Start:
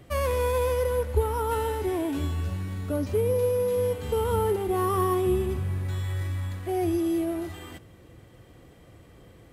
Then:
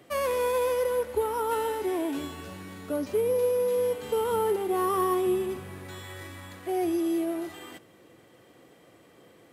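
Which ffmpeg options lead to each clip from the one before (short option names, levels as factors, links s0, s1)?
-af "highpass=250"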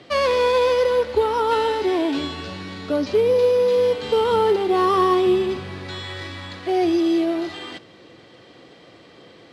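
-af "lowpass=f=4400:t=q:w=2.6,volume=2.51"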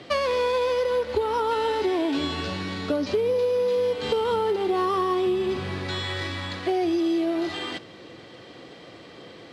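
-af "acompressor=threshold=0.0631:ratio=6,volume=1.33"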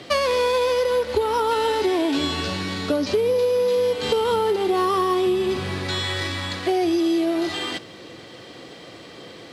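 -af "highshelf=f=6700:g=11.5,volume=1.41"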